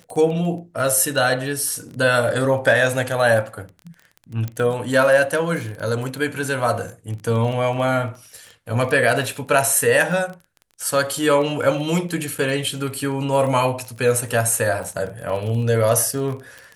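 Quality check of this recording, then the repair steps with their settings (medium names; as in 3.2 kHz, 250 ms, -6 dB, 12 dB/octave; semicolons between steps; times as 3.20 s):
crackle 22 per s -28 dBFS
4.48 s: pop -15 dBFS
12.38–12.39 s: dropout 5.8 ms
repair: de-click; interpolate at 12.38 s, 5.8 ms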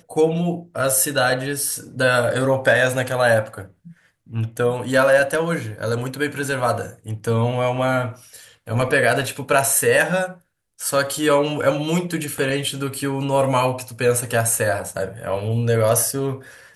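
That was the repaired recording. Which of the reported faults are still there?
nothing left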